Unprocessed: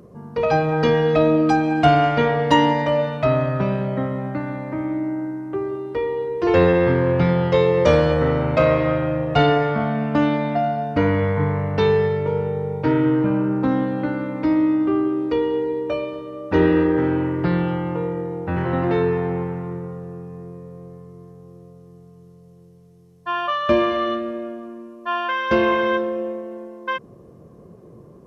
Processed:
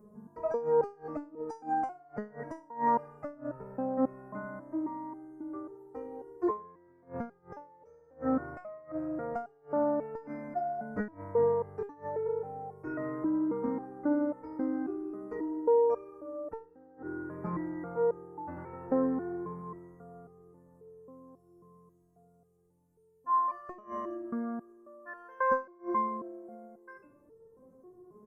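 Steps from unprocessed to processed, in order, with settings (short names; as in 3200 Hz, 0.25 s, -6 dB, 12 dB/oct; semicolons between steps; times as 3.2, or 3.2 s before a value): Butterworth band-stop 3400 Hz, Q 0.56; feedback echo 80 ms, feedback 47%, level -14.5 dB; flipped gate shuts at -9 dBFS, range -27 dB; stepped resonator 3.7 Hz 210–450 Hz; gain +3 dB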